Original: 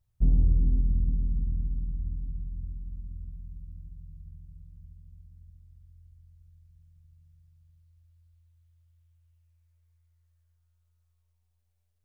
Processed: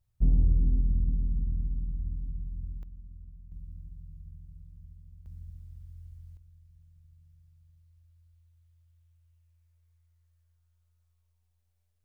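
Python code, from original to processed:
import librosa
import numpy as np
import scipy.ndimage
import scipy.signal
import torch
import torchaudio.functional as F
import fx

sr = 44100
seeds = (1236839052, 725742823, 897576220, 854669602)

y = fx.gain(x, sr, db=fx.steps((0.0, -1.0), (2.83, -7.5), (3.52, -0.5), (5.26, 7.5), (6.37, 0.0)))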